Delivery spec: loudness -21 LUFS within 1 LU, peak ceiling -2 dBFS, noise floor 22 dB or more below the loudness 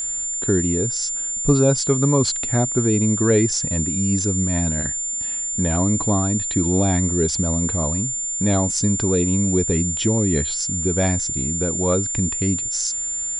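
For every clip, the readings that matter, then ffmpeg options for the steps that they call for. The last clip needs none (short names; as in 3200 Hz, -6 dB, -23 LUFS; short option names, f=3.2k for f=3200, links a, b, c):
steady tone 7200 Hz; tone level -23 dBFS; loudness -19.5 LUFS; peak -4.0 dBFS; loudness target -21.0 LUFS
-> -af "bandreject=f=7.2k:w=30"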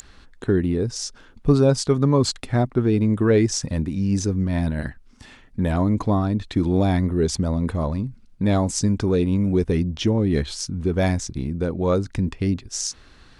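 steady tone none; loudness -22.0 LUFS; peak -5.0 dBFS; loudness target -21.0 LUFS
-> -af "volume=1dB"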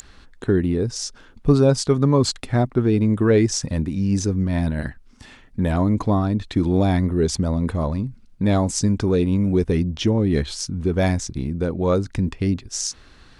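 loudness -21.0 LUFS; peak -4.0 dBFS; noise floor -49 dBFS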